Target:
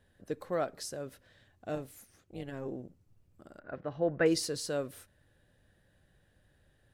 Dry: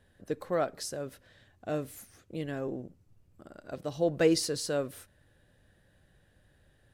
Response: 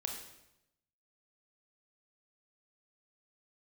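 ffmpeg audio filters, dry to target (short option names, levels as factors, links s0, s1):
-filter_complex "[0:a]asettb=1/sr,asplit=3[s0][s1][s2];[s0]atrim=end=1.754[s3];[s1]atrim=start=1.75:end=2.66,asetpts=PTS-STARTPTS,afade=t=in:d=0.004:c=qsin,afade=t=out:st=0.906:d=0.004:c=qsin,tremolo=f=270:d=0.621[s4];[s2]atrim=start=2.656[s5];[s3][s4]acrossfade=d=0.004:c1=hsin:c2=qsin[s6];[s6][s5]acrossfade=d=0.004:c1=qsin:c2=hsin,asettb=1/sr,asplit=3[s7][s8][s9];[s7]atrim=end=3.594[s10];[s8]atrim=start=3.59:end=4.26,asetpts=PTS-STARTPTS,afade=t=in:d=0.004:c=qsin,afade=t=out:st=0.666:d=0.004:c=qsin,lowpass=f=1700:t=q:w=2.1[s11];[s9]atrim=start=4.256[s12];[s10][s11]acrossfade=d=0.004:c1=hsin:c2=qsin[s13];[s13][s12]acrossfade=d=0.004:c1=qsin:c2=hsin,volume=0.708"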